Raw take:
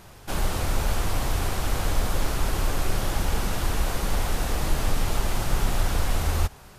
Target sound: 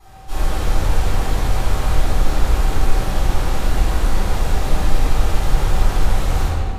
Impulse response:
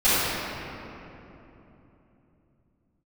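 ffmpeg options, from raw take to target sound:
-filter_complex "[0:a]aeval=exprs='val(0)+0.00631*sin(2*PI*770*n/s)':channel_layout=same[link_01];[1:a]atrim=start_sample=2205,asetrate=70560,aresample=44100[link_02];[link_01][link_02]afir=irnorm=-1:irlink=0,volume=-13dB"

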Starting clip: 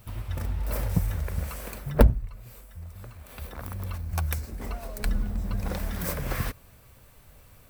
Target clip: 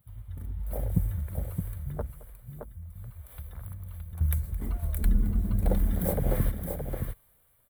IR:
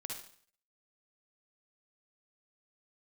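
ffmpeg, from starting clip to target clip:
-filter_complex "[0:a]afwtdn=0.0355,dynaudnorm=framelen=120:gausssize=13:maxgain=11.5dB,bandreject=frequency=2600:width=6.8,asettb=1/sr,asplit=3[link_01][link_02][link_03];[link_01]atrim=end=1.954[link_04];[link_02]atrim=start=1.95:end=4.21,asetpts=PTS-STARTPTS,afade=type=in:duration=0.004:curve=qsin,afade=type=out:start_time=2.256:duration=0.004:curve=qsin,acompressor=threshold=-29dB:ratio=10[link_05];[link_03]atrim=start=4.206[link_06];[link_04][link_05]acrossfade=duration=0.004:curve1=hsin:curve2=qsin[link_07];[link_07][link_06]acrossfade=duration=0.004:curve1=qsin:curve2=hsin,firequalizer=gain_entry='entry(280,0);entry(500,4);entry(3600,5);entry(5200,-7);entry(9800,13)':delay=0.05:min_phase=1,aecho=1:1:218|619:0.106|0.501,volume=-8dB"

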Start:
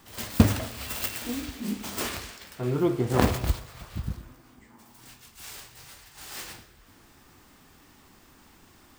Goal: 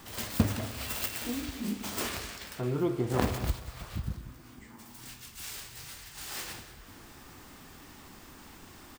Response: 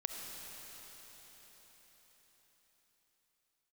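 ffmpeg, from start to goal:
-filter_complex "[0:a]asettb=1/sr,asplit=3[link_01][link_02][link_03];[link_01]atrim=end=4.174[link_04];[link_02]atrim=start=4.17:end=6.28,asetpts=PTS-STARTPTS,afade=type=in:duration=0.004:curve=qsin,afade=type=out:start_time=2.106:duration=0.004:curve=qsin,equalizer=frequency=700:width=0.71:gain=-4.5[link_05];[link_03]atrim=start=6.276[link_06];[link_04][link_05]acrossfade=duration=0.004:curve1=hsin:curve2=qsin[link_07];[link_07][link_06]acrossfade=duration=0.004:curve1=qsin:curve2=hsin,aecho=1:1:183:0.15,acompressor=threshold=-49dB:ratio=1.5,volume=5dB"

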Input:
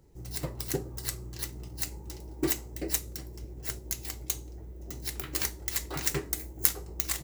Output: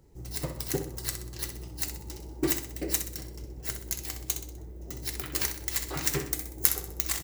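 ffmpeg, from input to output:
ffmpeg -i in.wav -af "aecho=1:1:63|126|189|252|315:0.355|0.16|0.0718|0.0323|0.0145,volume=1dB" out.wav

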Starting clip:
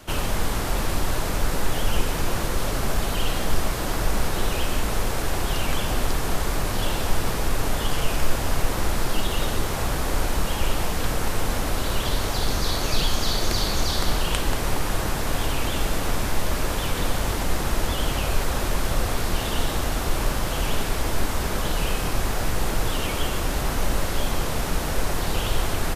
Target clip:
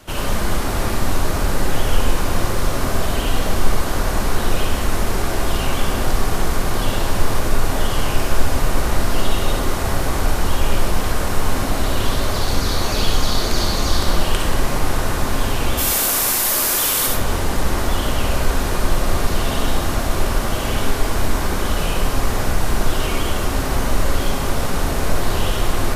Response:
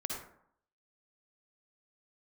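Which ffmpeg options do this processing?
-filter_complex "[0:a]asplit=3[link_01][link_02][link_03];[link_01]afade=type=out:start_time=15.77:duration=0.02[link_04];[link_02]aemphasis=mode=production:type=riaa,afade=type=in:start_time=15.77:duration=0.02,afade=type=out:start_time=17.06:duration=0.02[link_05];[link_03]afade=type=in:start_time=17.06:duration=0.02[link_06];[link_04][link_05][link_06]amix=inputs=3:normalize=0[link_07];[1:a]atrim=start_sample=2205,asetrate=41013,aresample=44100[link_08];[link_07][link_08]afir=irnorm=-1:irlink=0,volume=2dB"

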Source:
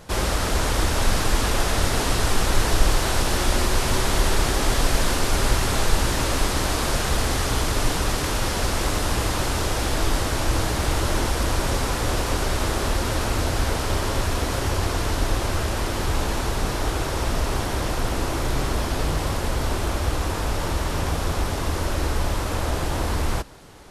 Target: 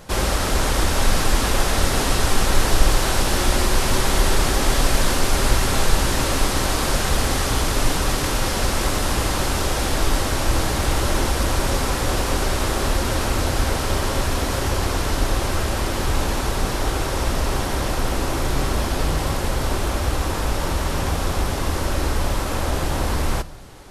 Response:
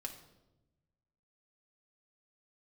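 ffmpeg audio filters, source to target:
-filter_complex "[0:a]asplit=2[link_01][link_02];[1:a]atrim=start_sample=2205,highshelf=frequency=10000:gain=10[link_03];[link_02][link_03]afir=irnorm=-1:irlink=0,volume=-7dB[link_04];[link_01][link_04]amix=inputs=2:normalize=0"

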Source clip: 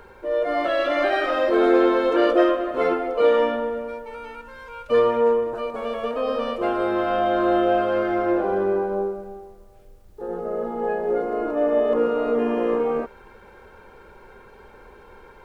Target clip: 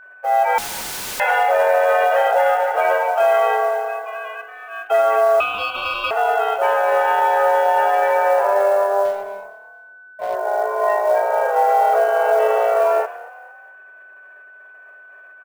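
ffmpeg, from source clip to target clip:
ffmpeg -i in.wav -filter_complex "[0:a]agate=range=-33dB:threshold=-36dB:ratio=3:detection=peak,aemphasis=mode=production:type=cd,alimiter=limit=-15.5dB:level=0:latency=1:release=26,highpass=frequency=150:width_type=q:width=0.5412,highpass=frequency=150:width_type=q:width=1.307,lowpass=frequency=2700:width_type=q:width=0.5176,lowpass=frequency=2700:width_type=q:width=0.7071,lowpass=frequency=2700:width_type=q:width=1.932,afreqshift=200,asettb=1/sr,asplit=3[link_01][link_02][link_03];[link_01]atrim=end=5.404[link_04];[link_02]atrim=start=5.4:end=6.11,asetpts=PTS-STARTPTS,afade=type=in:duration=0.004:curve=qsin,afade=type=out:start_time=0.706:duration=0.004:curve=qsin,aeval=exprs='val(0)*sin(2*PI*1900*n/s)':channel_layout=same[link_05];[link_03]atrim=start=6.106[link_06];[link_04][link_05]acrossfade=duration=0.004:curve1=hsin:curve2=qsin[link_07];[link_07][link_06]acrossfade=duration=0.004:curve1=qsin:curve2=hsin,asettb=1/sr,asplit=3[link_08][link_09][link_10];[link_08]atrim=end=9.054[link_11];[link_09]atrim=start=9.05:end=10.35,asetpts=PTS-STARTPTS,afade=type=in:duration=0.004:curve=qsin,afade=type=out:start_time=1.296:duration=0.004:curve=qsin,adynamicsmooth=sensitivity=6.5:basefreq=820[link_12];[link_10]atrim=start=10.346[link_13];[link_11][link_12]acrossfade=duration=0.004:curve1=hsin:curve2=qsin[link_14];[link_14][link_13]acrossfade=duration=0.004:curve1=qsin:curve2=hsin,acrusher=bits=7:mode=log:mix=0:aa=0.000001,asettb=1/sr,asplit=3[link_15][link_16][link_17];[link_15]atrim=end=0.584[link_18];[link_16]atrim=start=0.58:end=1.2,asetpts=PTS-STARTPTS,afade=type=in:duration=0.004:curve=qsin,afade=type=out:start_time=0.616:duration=0.004:curve=qsin,aeval=exprs='(mod(35.5*val(0)+1,2)-1)/35.5':channel_layout=same[link_19];[link_17]atrim=start=1.196[link_20];[link_18][link_19]acrossfade=duration=0.004:curve1=hsin:curve2=qsin[link_21];[link_21][link_20]acrossfade=duration=0.004:curve1=qsin:curve2=hsin,asplit=2[link_22][link_23];[link_23]asplit=3[link_24][link_25][link_26];[link_24]adelay=230,afreqshift=36,volume=-19dB[link_27];[link_25]adelay=460,afreqshift=72,volume=-26.3dB[link_28];[link_26]adelay=690,afreqshift=108,volume=-33.7dB[link_29];[link_27][link_28][link_29]amix=inputs=3:normalize=0[link_30];[link_22][link_30]amix=inputs=2:normalize=0,aeval=exprs='val(0)+0.00398*sin(2*PI*1500*n/s)':channel_layout=same,volume=7dB" out.wav

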